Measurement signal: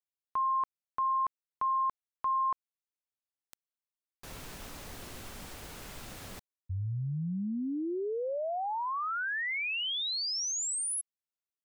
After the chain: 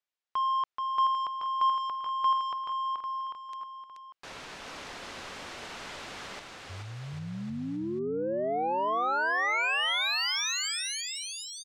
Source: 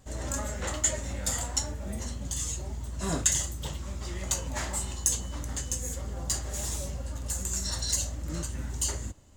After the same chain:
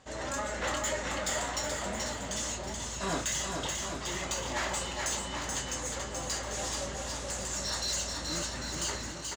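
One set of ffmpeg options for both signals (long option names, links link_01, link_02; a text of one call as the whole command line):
ffmpeg -i in.wav -filter_complex "[0:a]lowpass=6600,asplit=2[link_01][link_02];[link_02]highpass=frequency=720:poles=1,volume=21dB,asoftclip=type=tanh:threshold=-12.5dB[link_03];[link_01][link_03]amix=inputs=2:normalize=0,lowpass=frequency=4100:poles=1,volume=-6dB,asplit=2[link_04][link_05];[link_05]aecho=0:1:430|795.5|1106|1370|1595:0.631|0.398|0.251|0.158|0.1[link_06];[link_04][link_06]amix=inputs=2:normalize=0,volume=-8dB" out.wav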